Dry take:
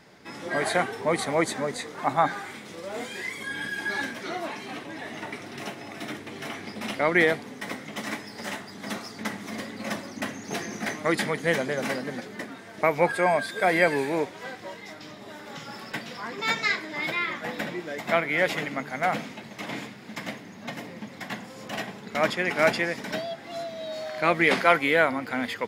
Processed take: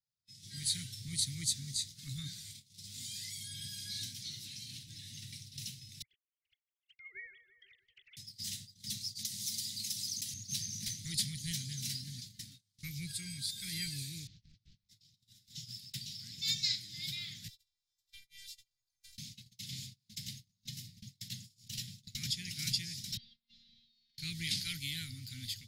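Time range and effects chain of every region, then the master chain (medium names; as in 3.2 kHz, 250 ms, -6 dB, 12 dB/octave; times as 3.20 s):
6.02–8.17 s: formants replaced by sine waves + expander -40 dBFS + bucket-brigade echo 165 ms, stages 2048, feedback 72%, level -13 dB
9.15–10.34 s: high-pass 130 Hz + treble shelf 3.2 kHz +11.5 dB + compression 10:1, threshold -31 dBFS
14.27–14.89 s: one-bit delta coder 32 kbps, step -53 dBFS + treble shelf 2.2 kHz -10 dB + loudspeaker Doppler distortion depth 0.37 ms
17.48–19.18 s: amplifier tone stack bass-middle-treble 5-5-5 + robot voice 392 Hz
23.17–24.18 s: low-pass 3.7 kHz 24 dB/octave + compression 16:1, threshold -35 dBFS + robot voice 232 Hz
whole clip: gate -39 dBFS, range -30 dB; Chebyshev band-stop 120–4200 Hz, order 3; level rider gain up to 8 dB; trim -4.5 dB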